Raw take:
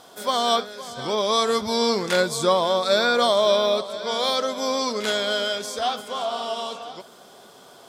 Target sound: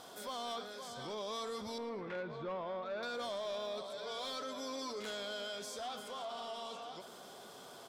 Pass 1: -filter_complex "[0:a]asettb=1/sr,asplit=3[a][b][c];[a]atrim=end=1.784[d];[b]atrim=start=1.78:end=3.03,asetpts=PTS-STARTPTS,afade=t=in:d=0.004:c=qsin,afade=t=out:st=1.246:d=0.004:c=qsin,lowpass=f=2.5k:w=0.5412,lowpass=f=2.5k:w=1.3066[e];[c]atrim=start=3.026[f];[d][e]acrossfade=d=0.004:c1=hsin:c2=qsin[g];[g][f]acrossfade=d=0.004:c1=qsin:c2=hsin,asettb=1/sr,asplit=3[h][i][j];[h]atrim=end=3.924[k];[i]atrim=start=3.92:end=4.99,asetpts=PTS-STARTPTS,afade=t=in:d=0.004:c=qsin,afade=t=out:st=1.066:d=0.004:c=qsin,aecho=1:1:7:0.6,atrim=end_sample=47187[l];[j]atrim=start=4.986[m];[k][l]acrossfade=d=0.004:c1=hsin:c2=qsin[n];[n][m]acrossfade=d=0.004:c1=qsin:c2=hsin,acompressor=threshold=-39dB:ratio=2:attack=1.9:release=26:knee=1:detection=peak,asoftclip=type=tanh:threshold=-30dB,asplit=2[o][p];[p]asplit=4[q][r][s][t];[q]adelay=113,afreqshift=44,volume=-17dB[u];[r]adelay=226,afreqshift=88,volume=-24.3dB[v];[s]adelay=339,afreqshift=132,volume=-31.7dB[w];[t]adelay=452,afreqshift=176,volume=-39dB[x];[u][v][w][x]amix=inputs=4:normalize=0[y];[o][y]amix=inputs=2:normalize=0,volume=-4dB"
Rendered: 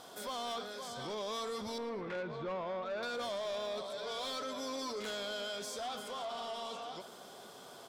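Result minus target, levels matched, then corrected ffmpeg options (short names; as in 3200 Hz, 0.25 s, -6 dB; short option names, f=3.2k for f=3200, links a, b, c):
compressor: peak gain reduction -3 dB
-filter_complex "[0:a]asettb=1/sr,asplit=3[a][b][c];[a]atrim=end=1.784[d];[b]atrim=start=1.78:end=3.03,asetpts=PTS-STARTPTS,afade=t=in:d=0.004:c=qsin,afade=t=out:st=1.246:d=0.004:c=qsin,lowpass=f=2.5k:w=0.5412,lowpass=f=2.5k:w=1.3066[e];[c]atrim=start=3.026[f];[d][e]acrossfade=d=0.004:c1=hsin:c2=qsin[g];[g][f]acrossfade=d=0.004:c1=qsin:c2=hsin,asettb=1/sr,asplit=3[h][i][j];[h]atrim=end=3.924[k];[i]atrim=start=3.92:end=4.99,asetpts=PTS-STARTPTS,afade=t=in:d=0.004:c=qsin,afade=t=out:st=1.066:d=0.004:c=qsin,aecho=1:1:7:0.6,atrim=end_sample=47187[l];[j]atrim=start=4.986[m];[k][l]acrossfade=d=0.004:c1=hsin:c2=qsin[n];[n][m]acrossfade=d=0.004:c1=qsin:c2=hsin,acompressor=threshold=-45.5dB:ratio=2:attack=1.9:release=26:knee=1:detection=peak,asoftclip=type=tanh:threshold=-30dB,asplit=2[o][p];[p]asplit=4[q][r][s][t];[q]adelay=113,afreqshift=44,volume=-17dB[u];[r]adelay=226,afreqshift=88,volume=-24.3dB[v];[s]adelay=339,afreqshift=132,volume=-31.7dB[w];[t]adelay=452,afreqshift=176,volume=-39dB[x];[u][v][w][x]amix=inputs=4:normalize=0[y];[o][y]amix=inputs=2:normalize=0,volume=-4dB"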